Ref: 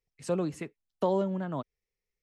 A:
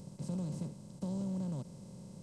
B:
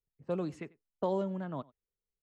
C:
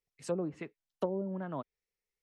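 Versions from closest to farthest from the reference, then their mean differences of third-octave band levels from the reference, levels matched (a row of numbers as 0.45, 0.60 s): B, C, A; 1.5, 3.5, 9.5 dB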